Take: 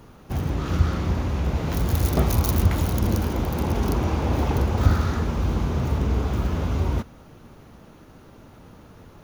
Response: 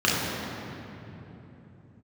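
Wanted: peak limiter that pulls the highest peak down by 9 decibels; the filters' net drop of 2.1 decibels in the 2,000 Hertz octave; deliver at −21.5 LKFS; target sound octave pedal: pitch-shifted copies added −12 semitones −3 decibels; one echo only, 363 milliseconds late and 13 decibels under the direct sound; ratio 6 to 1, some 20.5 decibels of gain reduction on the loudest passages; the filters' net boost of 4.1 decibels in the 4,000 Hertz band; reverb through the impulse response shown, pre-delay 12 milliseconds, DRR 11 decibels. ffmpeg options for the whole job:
-filter_complex "[0:a]equalizer=frequency=2000:width_type=o:gain=-4.5,equalizer=frequency=4000:width_type=o:gain=6.5,acompressor=threshold=-36dB:ratio=6,alimiter=level_in=7.5dB:limit=-24dB:level=0:latency=1,volume=-7.5dB,aecho=1:1:363:0.224,asplit=2[link_01][link_02];[1:a]atrim=start_sample=2205,adelay=12[link_03];[link_02][link_03]afir=irnorm=-1:irlink=0,volume=-29dB[link_04];[link_01][link_04]amix=inputs=2:normalize=0,asplit=2[link_05][link_06];[link_06]asetrate=22050,aresample=44100,atempo=2,volume=-3dB[link_07];[link_05][link_07]amix=inputs=2:normalize=0,volume=18.5dB"

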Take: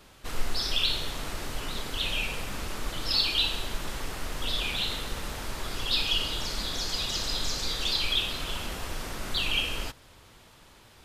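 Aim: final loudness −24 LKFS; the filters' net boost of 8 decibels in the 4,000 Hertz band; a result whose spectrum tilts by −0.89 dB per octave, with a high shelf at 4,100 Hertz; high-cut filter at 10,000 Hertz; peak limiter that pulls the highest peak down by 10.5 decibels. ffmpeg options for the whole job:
ffmpeg -i in.wav -af "lowpass=10000,equalizer=frequency=4000:width_type=o:gain=7,highshelf=frequency=4100:gain=5,volume=0.5dB,alimiter=limit=-13.5dB:level=0:latency=1" out.wav

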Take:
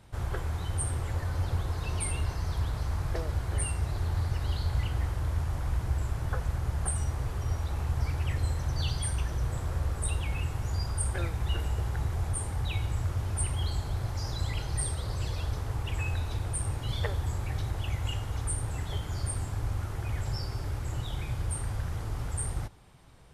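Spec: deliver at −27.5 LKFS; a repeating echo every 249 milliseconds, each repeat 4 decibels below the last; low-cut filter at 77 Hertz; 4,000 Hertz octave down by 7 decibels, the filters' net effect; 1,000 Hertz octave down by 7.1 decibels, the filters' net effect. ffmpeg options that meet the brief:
ffmpeg -i in.wav -af "highpass=77,equalizer=frequency=1000:width_type=o:gain=-9,equalizer=frequency=4000:width_type=o:gain=-9,aecho=1:1:249|498|747|996|1245|1494|1743|1992|2241:0.631|0.398|0.25|0.158|0.0994|0.0626|0.0394|0.0249|0.0157,volume=5.5dB" out.wav

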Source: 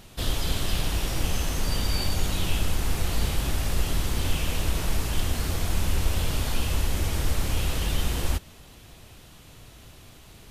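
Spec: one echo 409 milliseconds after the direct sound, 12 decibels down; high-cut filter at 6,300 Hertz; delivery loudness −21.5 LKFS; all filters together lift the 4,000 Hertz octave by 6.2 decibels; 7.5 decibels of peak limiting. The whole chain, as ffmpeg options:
ffmpeg -i in.wav -af "lowpass=6300,equalizer=frequency=4000:width_type=o:gain=8.5,alimiter=limit=-18dB:level=0:latency=1,aecho=1:1:409:0.251,volume=7.5dB" out.wav

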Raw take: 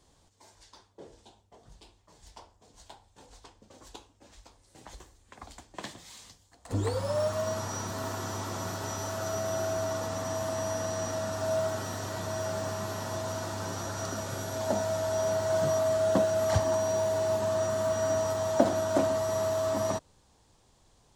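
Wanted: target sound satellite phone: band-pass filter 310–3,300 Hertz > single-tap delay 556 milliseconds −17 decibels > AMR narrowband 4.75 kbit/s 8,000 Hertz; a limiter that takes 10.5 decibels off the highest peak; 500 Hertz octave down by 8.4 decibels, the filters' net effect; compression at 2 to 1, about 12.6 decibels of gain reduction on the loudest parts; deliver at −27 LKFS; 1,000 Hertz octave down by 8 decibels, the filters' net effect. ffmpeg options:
ffmpeg -i in.wav -af "equalizer=frequency=500:width_type=o:gain=-8,equalizer=frequency=1000:width_type=o:gain=-7.5,acompressor=threshold=-46dB:ratio=2,alimiter=level_in=11dB:limit=-24dB:level=0:latency=1,volume=-11dB,highpass=310,lowpass=3300,aecho=1:1:556:0.141,volume=23.5dB" -ar 8000 -c:a libopencore_amrnb -b:a 4750 out.amr

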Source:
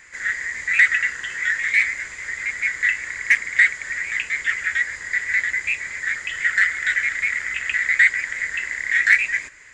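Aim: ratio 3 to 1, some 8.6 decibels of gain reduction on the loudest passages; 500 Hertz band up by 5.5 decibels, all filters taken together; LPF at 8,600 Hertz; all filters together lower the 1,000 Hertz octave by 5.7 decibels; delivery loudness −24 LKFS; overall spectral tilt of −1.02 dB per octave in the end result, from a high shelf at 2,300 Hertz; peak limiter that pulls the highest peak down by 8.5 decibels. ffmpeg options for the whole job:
ffmpeg -i in.wav -af "lowpass=8600,equalizer=frequency=500:width_type=o:gain=9,equalizer=frequency=1000:width_type=o:gain=-8.5,highshelf=frequency=2300:gain=-6.5,acompressor=threshold=-26dB:ratio=3,volume=6.5dB,alimiter=limit=-14.5dB:level=0:latency=1" out.wav

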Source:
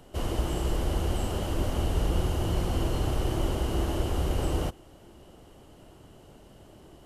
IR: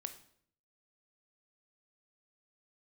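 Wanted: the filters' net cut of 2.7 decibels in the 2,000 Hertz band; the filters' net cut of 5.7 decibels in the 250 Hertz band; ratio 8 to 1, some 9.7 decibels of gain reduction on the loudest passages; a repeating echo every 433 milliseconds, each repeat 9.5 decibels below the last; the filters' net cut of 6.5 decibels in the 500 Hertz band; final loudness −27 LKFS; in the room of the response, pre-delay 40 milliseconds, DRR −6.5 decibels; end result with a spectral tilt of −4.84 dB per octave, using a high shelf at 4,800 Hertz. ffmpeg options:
-filter_complex "[0:a]equalizer=frequency=250:width_type=o:gain=-6,equalizer=frequency=500:width_type=o:gain=-6.5,equalizer=frequency=2000:width_type=o:gain=-4,highshelf=frequency=4800:gain=4,acompressor=threshold=-33dB:ratio=8,aecho=1:1:433|866|1299|1732:0.335|0.111|0.0365|0.012,asplit=2[link_01][link_02];[1:a]atrim=start_sample=2205,adelay=40[link_03];[link_02][link_03]afir=irnorm=-1:irlink=0,volume=9dB[link_04];[link_01][link_04]amix=inputs=2:normalize=0,volume=6dB"

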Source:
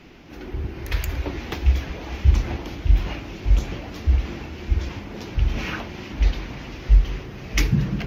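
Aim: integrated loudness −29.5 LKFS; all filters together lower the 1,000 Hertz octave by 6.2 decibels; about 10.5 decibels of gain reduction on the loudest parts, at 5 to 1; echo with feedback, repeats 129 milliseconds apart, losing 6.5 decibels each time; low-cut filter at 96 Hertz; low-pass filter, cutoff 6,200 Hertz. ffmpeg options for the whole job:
ffmpeg -i in.wav -af "highpass=96,lowpass=6200,equalizer=frequency=1000:width_type=o:gain=-8.5,acompressor=threshold=-28dB:ratio=5,aecho=1:1:129|258|387|516|645|774:0.473|0.222|0.105|0.0491|0.0231|0.0109,volume=4.5dB" out.wav

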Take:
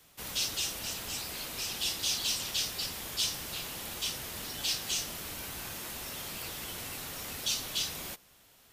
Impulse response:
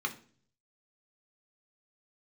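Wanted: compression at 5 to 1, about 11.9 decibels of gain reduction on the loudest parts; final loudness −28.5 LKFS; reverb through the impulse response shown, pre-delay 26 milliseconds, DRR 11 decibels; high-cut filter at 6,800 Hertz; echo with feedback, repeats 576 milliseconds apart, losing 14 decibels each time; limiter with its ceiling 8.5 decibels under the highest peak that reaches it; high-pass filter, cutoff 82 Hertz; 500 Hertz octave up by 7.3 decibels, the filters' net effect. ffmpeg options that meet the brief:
-filter_complex "[0:a]highpass=82,lowpass=6800,equalizer=frequency=500:width_type=o:gain=9,acompressor=threshold=-42dB:ratio=5,alimiter=level_in=13dB:limit=-24dB:level=0:latency=1,volume=-13dB,aecho=1:1:576|1152:0.2|0.0399,asplit=2[link_01][link_02];[1:a]atrim=start_sample=2205,adelay=26[link_03];[link_02][link_03]afir=irnorm=-1:irlink=0,volume=-16dB[link_04];[link_01][link_04]amix=inputs=2:normalize=0,volume=16.5dB"

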